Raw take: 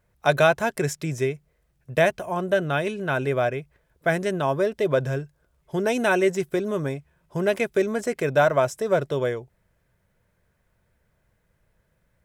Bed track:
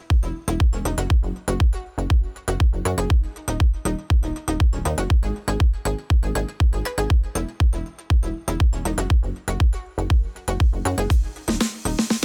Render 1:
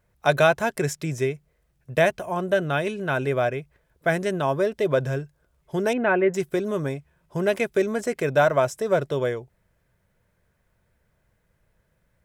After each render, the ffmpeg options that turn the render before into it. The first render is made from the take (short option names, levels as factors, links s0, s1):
-filter_complex "[0:a]asettb=1/sr,asplit=3[s0][s1][s2];[s0]atrim=end=5.934[s3];[s1]atrim=start=5.93:end=6.34,asetpts=PTS-STARTPTS,afade=t=in:d=0.004:c=qsin,afade=t=out:st=0.406:d=0.004:c=qsin,lowpass=f=2300:w=0.5412,lowpass=f=2300:w=1.3066[s4];[s2]atrim=start=6.336[s5];[s3][s4]acrossfade=d=0.004:c1=hsin:c2=qsin[s6];[s6][s5]acrossfade=d=0.004:c1=qsin:c2=hsin"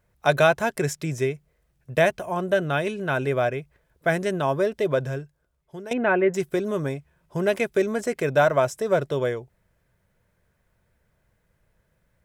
-filter_complex "[0:a]asplit=2[s0][s1];[s0]atrim=end=5.91,asetpts=PTS-STARTPTS,afade=t=out:st=4.74:d=1.17:silence=0.158489[s2];[s1]atrim=start=5.91,asetpts=PTS-STARTPTS,afade=t=in:d=0.004:c=hsin:silence=0.158489[s3];[s2][s3]concat=n=2:v=0:a=1"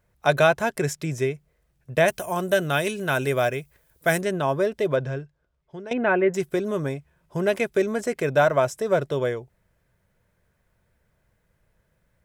-filter_complex "[0:a]asettb=1/sr,asplit=3[s0][s1][s2];[s0]atrim=end=2.084[s3];[s1]atrim=start=2.08:end=4.21,asetpts=PTS-STARTPTS,afade=t=in:d=0.004:c=qsin,afade=t=out:st=2.126:d=0.004:c=qsin,aemphasis=mode=production:type=75kf[s4];[s2]atrim=start=4.206[s5];[s3][s4]acrossfade=d=0.004:c1=hsin:c2=qsin[s6];[s6][s5]acrossfade=d=0.004:c1=qsin:c2=hsin,asettb=1/sr,asplit=3[s7][s8][s9];[s7]atrim=end=4.964[s10];[s8]atrim=start=4.96:end=6.03,asetpts=PTS-STARTPTS,afade=t=in:d=0.004:c=qsin,afade=t=out:st=1.066:d=0.004:c=qsin,lowpass=5000[s11];[s9]atrim=start=6.026[s12];[s10][s11]acrossfade=d=0.004:c1=hsin:c2=qsin[s13];[s13][s12]acrossfade=d=0.004:c1=qsin:c2=hsin"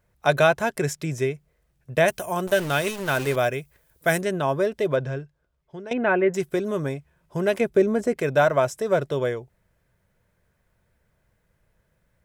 -filter_complex "[0:a]asettb=1/sr,asplit=3[s0][s1][s2];[s0]atrim=end=2.474[s3];[s1]atrim=start=2.47:end=3.36,asetpts=PTS-STARTPTS,afade=t=in:d=0.004:c=qsin,afade=t=out:st=0.886:d=0.004:c=qsin,aeval=exprs='val(0)*gte(abs(val(0)),0.0316)':c=same[s4];[s2]atrim=start=3.356[s5];[s3][s4]acrossfade=d=0.004:c1=hsin:c2=qsin[s6];[s6][s5]acrossfade=d=0.004:c1=qsin:c2=hsin,asettb=1/sr,asplit=3[s7][s8][s9];[s7]atrim=end=7.604[s10];[s8]atrim=start=7.6:end=8.18,asetpts=PTS-STARTPTS,afade=t=in:d=0.004:c=qsin,afade=t=out:st=0.576:d=0.004:c=qsin,tiltshelf=f=850:g=5.5[s11];[s9]atrim=start=8.176[s12];[s10][s11]acrossfade=d=0.004:c1=hsin:c2=qsin[s13];[s13][s12]acrossfade=d=0.004:c1=qsin:c2=hsin"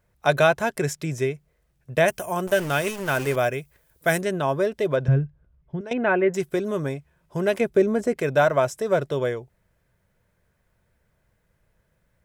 -filter_complex "[0:a]asettb=1/sr,asplit=3[s0][s1][s2];[s0]atrim=end=2.054[s3];[s1]atrim=start=2.05:end=3.58,asetpts=PTS-STARTPTS,afade=t=in:d=0.004:c=qsin,afade=t=out:st=1.526:d=0.004:c=qsin,equalizer=f=3900:t=o:w=0.3:g=-6.5[s4];[s2]atrim=start=3.576[s5];[s3][s4]acrossfade=d=0.004:c1=hsin:c2=qsin[s6];[s6][s5]acrossfade=d=0.004:c1=qsin:c2=hsin,asettb=1/sr,asplit=3[s7][s8][s9];[s7]atrim=end=5.084[s10];[s8]atrim=start=5.08:end=5.81,asetpts=PTS-STARTPTS,afade=t=in:d=0.004:c=qsin,afade=t=out:st=0.726:d=0.004:c=qsin,bass=f=250:g=15,treble=f=4000:g=-15[s11];[s9]atrim=start=5.806[s12];[s10][s11]acrossfade=d=0.004:c1=hsin:c2=qsin[s13];[s13][s12]acrossfade=d=0.004:c1=qsin:c2=hsin"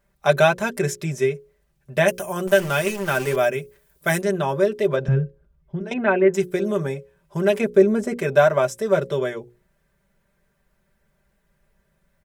-af "bandreject=f=60:t=h:w=6,bandreject=f=120:t=h:w=6,bandreject=f=180:t=h:w=6,bandreject=f=240:t=h:w=6,bandreject=f=300:t=h:w=6,bandreject=f=360:t=h:w=6,bandreject=f=420:t=h:w=6,bandreject=f=480:t=h:w=6,bandreject=f=540:t=h:w=6,aecho=1:1:5.1:0.77"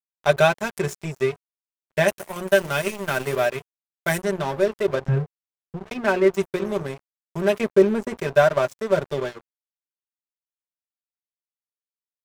-af "aeval=exprs='sgn(val(0))*max(abs(val(0))-0.0316,0)':c=same"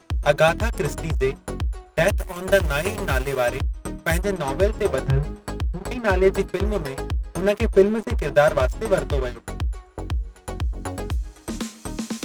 -filter_complex "[1:a]volume=0.398[s0];[0:a][s0]amix=inputs=2:normalize=0"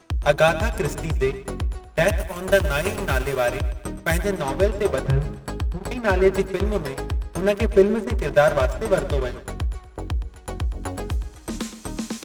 -af "aecho=1:1:119|238|357|476:0.178|0.0782|0.0344|0.0151"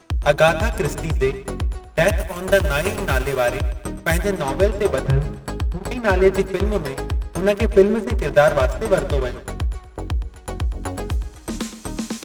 -af "volume=1.33,alimiter=limit=0.794:level=0:latency=1"